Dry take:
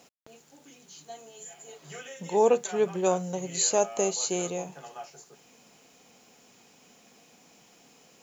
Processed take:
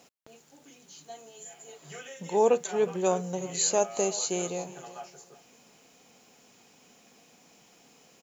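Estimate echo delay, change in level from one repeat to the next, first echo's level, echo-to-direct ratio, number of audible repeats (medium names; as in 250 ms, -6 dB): 363 ms, -12.5 dB, -18.0 dB, -18.0 dB, 2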